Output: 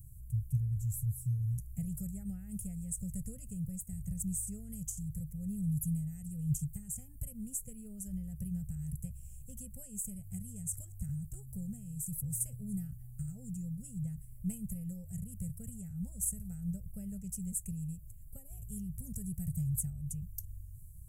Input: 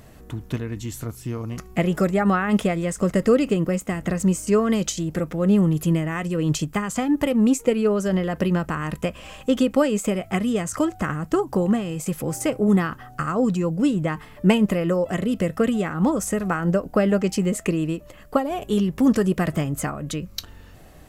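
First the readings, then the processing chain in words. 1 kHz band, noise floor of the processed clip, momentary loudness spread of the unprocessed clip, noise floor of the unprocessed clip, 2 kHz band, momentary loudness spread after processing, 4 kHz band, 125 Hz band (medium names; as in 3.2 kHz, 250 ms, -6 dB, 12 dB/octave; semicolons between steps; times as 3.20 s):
under -40 dB, -50 dBFS, 11 LU, -45 dBFS, under -40 dB, 10 LU, under -35 dB, -10.5 dB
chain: elliptic band-stop 120–9000 Hz, stop band 40 dB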